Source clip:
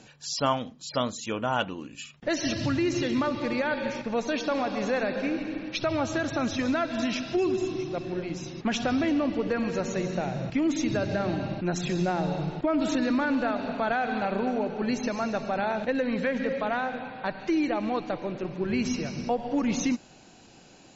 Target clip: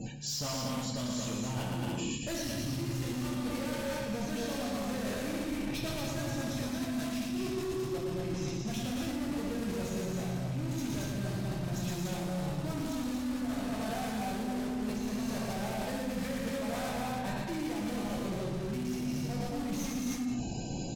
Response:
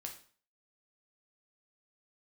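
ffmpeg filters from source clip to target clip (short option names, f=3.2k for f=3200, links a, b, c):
-filter_complex "[0:a]bandreject=f=1.4k:w=5.7,asplit=2[a][b];[b]aeval=exprs='(mod(23.7*val(0)+1,2)-1)/23.7':c=same,volume=-5dB[c];[a][c]amix=inputs=2:normalize=0[d];[1:a]atrim=start_sample=2205,afade=t=out:st=0.19:d=0.01,atrim=end_sample=8820,asetrate=32193,aresample=44100[e];[d][e]afir=irnorm=-1:irlink=0,asoftclip=type=hard:threshold=-28dB,bass=f=250:g=11,treble=f=4k:g=5,afftdn=nr=33:nf=-51,aecho=1:1:116.6|227.4|291.5:0.631|0.708|0.501,areverse,acompressor=threshold=-40dB:ratio=12,areverse,volume=8dB"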